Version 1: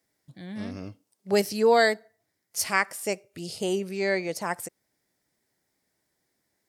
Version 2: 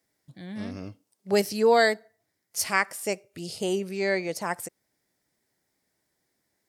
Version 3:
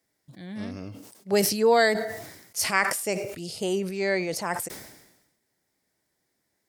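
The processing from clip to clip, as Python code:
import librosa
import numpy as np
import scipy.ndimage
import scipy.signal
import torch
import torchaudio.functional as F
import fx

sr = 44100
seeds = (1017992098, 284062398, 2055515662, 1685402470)

y1 = x
y2 = fx.sustainer(y1, sr, db_per_s=57.0)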